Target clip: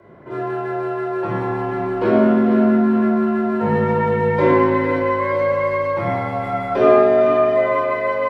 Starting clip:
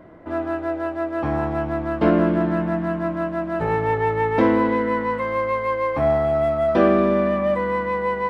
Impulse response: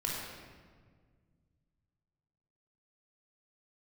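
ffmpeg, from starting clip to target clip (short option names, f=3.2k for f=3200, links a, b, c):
-filter_complex "[0:a]afreqshift=44,aecho=1:1:457|914|1371|1828|2285:0.355|0.153|0.0656|0.0282|0.0121[a];[1:a]atrim=start_sample=2205,afade=t=out:st=0.25:d=0.01,atrim=end_sample=11466[b];[a][b]afir=irnorm=-1:irlink=0,volume=-2dB"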